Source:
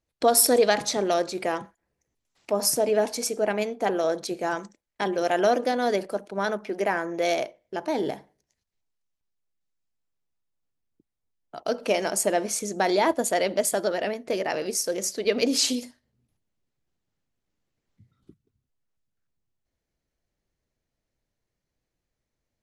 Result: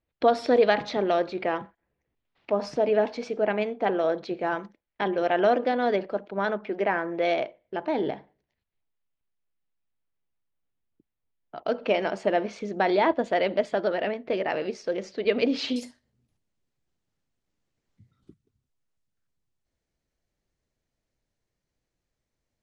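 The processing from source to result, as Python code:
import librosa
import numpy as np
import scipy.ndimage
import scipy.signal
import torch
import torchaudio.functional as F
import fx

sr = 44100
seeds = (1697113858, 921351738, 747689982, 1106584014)

y = fx.lowpass(x, sr, hz=fx.steps((0.0, 3500.0), (15.76, 9700.0)), slope=24)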